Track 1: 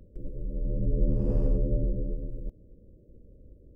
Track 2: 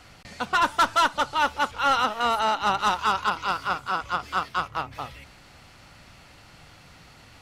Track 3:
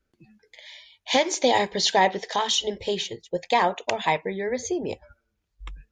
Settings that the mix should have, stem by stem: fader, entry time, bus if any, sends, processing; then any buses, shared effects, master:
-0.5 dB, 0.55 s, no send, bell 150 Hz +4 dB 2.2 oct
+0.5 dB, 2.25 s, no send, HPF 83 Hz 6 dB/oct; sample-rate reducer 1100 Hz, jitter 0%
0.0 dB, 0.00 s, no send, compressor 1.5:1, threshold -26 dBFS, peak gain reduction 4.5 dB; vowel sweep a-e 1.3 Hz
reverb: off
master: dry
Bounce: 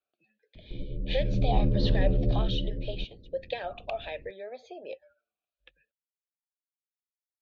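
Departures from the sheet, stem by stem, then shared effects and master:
stem 2: muted; master: extra synth low-pass 4000 Hz, resonance Q 3.8

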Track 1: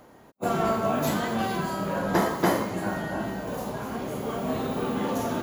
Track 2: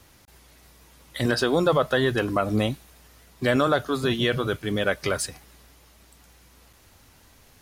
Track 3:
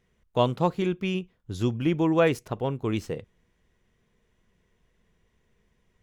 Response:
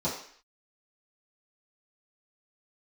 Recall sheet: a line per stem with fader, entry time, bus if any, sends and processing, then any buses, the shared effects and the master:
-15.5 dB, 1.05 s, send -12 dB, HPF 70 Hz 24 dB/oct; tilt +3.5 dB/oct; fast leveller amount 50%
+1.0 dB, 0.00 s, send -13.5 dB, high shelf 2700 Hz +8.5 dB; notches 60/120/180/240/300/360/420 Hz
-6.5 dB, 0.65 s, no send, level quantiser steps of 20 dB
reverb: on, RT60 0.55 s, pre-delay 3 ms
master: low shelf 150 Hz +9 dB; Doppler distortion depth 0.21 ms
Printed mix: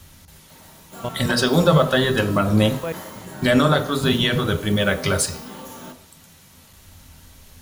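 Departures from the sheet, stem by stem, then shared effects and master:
stem 1: entry 1.05 s -> 0.50 s; master: missing Doppler distortion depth 0.21 ms

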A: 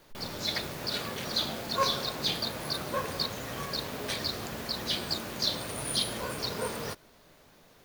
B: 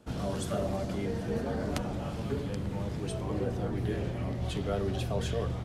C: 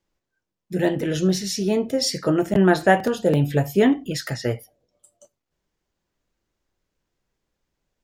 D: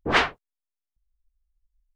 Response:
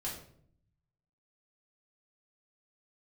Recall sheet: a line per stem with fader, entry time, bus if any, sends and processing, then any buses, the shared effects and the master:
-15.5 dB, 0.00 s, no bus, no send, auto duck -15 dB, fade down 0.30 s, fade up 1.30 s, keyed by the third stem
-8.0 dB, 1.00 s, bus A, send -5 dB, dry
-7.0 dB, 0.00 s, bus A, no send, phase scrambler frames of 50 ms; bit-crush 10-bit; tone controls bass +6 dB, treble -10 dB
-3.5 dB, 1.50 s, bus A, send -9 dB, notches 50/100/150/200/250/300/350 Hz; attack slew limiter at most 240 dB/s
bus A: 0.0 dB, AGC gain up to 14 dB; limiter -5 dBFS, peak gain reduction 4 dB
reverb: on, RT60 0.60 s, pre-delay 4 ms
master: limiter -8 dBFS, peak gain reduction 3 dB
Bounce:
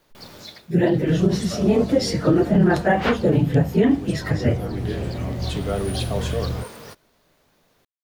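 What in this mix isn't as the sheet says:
stem A -15.5 dB -> -4.0 dB; stem D: entry 1.50 s -> 2.85 s

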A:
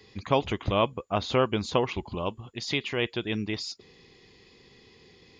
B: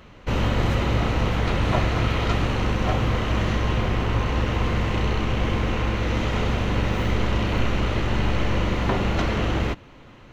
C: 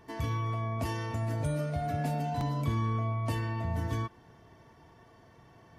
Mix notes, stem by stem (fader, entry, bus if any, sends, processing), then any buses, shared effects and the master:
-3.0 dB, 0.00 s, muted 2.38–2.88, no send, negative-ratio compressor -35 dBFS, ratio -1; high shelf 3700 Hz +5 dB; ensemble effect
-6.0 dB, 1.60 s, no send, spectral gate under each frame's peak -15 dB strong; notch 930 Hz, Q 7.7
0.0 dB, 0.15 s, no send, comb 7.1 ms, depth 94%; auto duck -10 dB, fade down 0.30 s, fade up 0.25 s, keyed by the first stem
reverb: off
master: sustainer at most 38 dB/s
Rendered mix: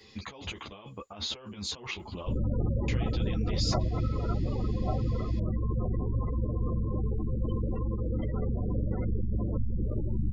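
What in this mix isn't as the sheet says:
stem B: entry 1.60 s -> 2.00 s; stem C: muted; master: missing sustainer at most 38 dB/s

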